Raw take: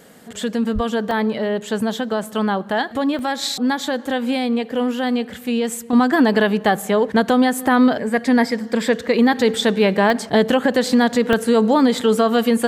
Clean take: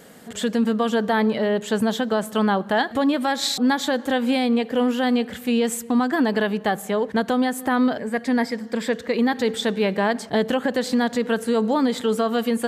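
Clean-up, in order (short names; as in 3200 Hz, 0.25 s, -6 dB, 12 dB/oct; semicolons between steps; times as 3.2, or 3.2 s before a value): 0.74–0.86 HPF 140 Hz 24 dB/oct; interpolate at 1.11/2.24/3.19/10.1/11.33, 1.1 ms; gain 0 dB, from 5.93 s -5.5 dB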